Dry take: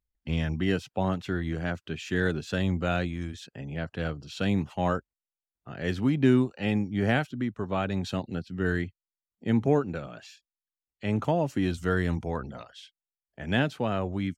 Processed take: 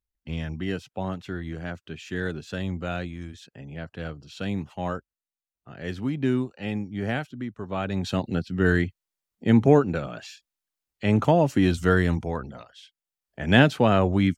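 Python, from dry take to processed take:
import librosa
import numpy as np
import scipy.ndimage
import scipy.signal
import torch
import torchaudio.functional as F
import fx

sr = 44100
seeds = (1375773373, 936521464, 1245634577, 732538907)

y = fx.gain(x, sr, db=fx.line((7.6, -3.0), (8.29, 6.5), (11.89, 6.5), (12.72, -2.0), (13.61, 9.0)))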